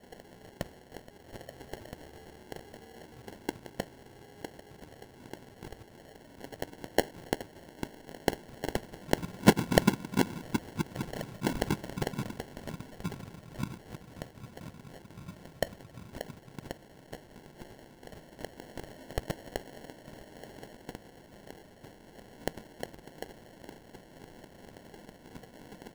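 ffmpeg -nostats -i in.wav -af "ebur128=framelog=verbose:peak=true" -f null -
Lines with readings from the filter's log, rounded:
Integrated loudness:
  I:         -35.9 LUFS
  Threshold: -48.0 LUFS
Loudness range:
  LRA:        16.2 LU
  Threshold: -57.6 LUFS
  LRA low:   -46.6 LUFS
  LRA high:  -30.4 LUFS
True peak:
  Peak:       -3.4 dBFS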